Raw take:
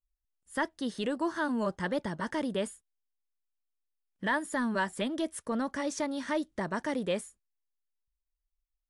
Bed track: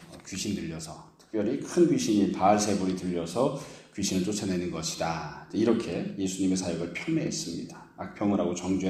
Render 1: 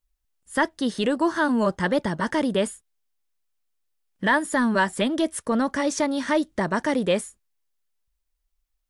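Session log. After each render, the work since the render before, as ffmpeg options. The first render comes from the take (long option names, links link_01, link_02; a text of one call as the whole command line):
ffmpeg -i in.wav -af "volume=9dB" out.wav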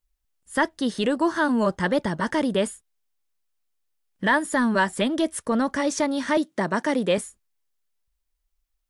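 ffmpeg -i in.wav -filter_complex "[0:a]asettb=1/sr,asplit=3[link_01][link_02][link_03];[link_01]atrim=end=6.374[link_04];[link_02]atrim=start=6.37:end=7.18,asetpts=PTS-STARTPTS,afade=type=in:duration=0.004:curve=qsin,afade=type=out:start_time=0.806:duration=0.004:curve=qsin,highpass=frequency=150:width=0.5412,highpass=frequency=150:width=1.3066[link_05];[link_03]atrim=start=7.176[link_06];[link_04][link_05]acrossfade=duration=0.004:curve1=hsin:curve2=qsin[link_07];[link_07][link_06]acrossfade=duration=0.004:curve1=qsin:curve2=hsin" out.wav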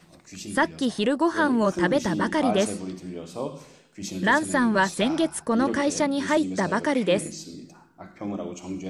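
ffmpeg -i in.wav -i bed.wav -filter_complex "[1:a]volume=-5.5dB[link_01];[0:a][link_01]amix=inputs=2:normalize=0" out.wav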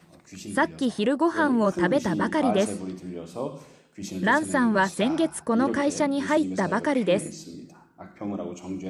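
ffmpeg -i in.wav -af "highpass=54,equalizer=frequency=5000:width=0.57:gain=-4.5" out.wav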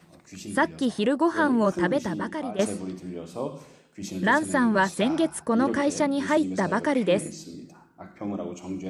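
ffmpeg -i in.wav -filter_complex "[0:a]asplit=2[link_01][link_02];[link_01]atrim=end=2.59,asetpts=PTS-STARTPTS,afade=type=out:start_time=1.7:duration=0.89:silence=0.223872[link_03];[link_02]atrim=start=2.59,asetpts=PTS-STARTPTS,afade=type=in:duration=0.004:curve=hsin:silence=0.223872[link_04];[link_03][link_04]concat=n=2:v=0:a=1" out.wav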